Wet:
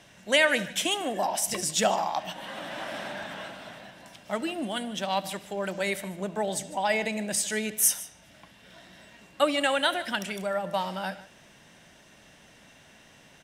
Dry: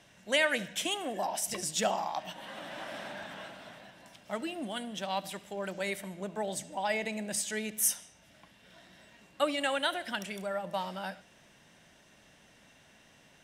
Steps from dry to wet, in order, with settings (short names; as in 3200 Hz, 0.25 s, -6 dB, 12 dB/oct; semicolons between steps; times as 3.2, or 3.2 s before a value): echo 0.151 s -18.5 dB; gain +5.5 dB